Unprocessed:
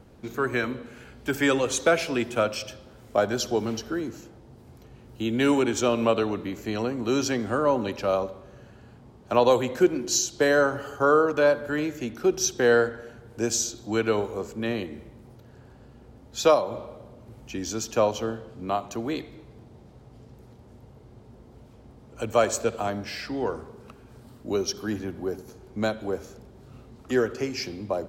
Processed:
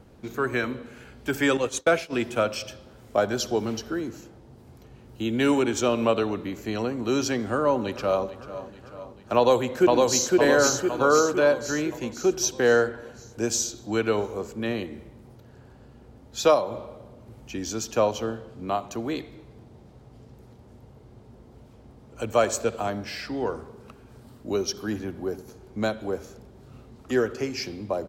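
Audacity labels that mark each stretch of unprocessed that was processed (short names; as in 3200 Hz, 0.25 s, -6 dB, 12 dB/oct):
1.570000	2.130000	expander -24 dBFS
7.450000	8.250000	echo throw 0.44 s, feedback 65%, level -15.5 dB
9.360000	10.310000	echo throw 0.51 s, feedback 55%, level -1.5 dB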